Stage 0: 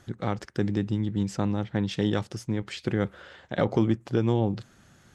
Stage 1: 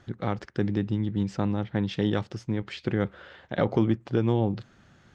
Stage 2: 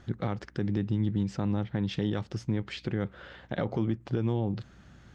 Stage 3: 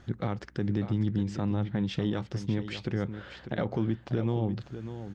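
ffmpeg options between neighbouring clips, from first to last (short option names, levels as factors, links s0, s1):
-af "lowpass=4400"
-af "bass=f=250:g=3,treble=f=4000:g=1,aeval=exprs='val(0)+0.00141*(sin(2*PI*60*n/s)+sin(2*PI*2*60*n/s)/2+sin(2*PI*3*60*n/s)/3+sin(2*PI*4*60*n/s)/4+sin(2*PI*5*60*n/s)/5)':c=same,alimiter=limit=0.119:level=0:latency=1:release=213"
-af "aecho=1:1:596:0.299"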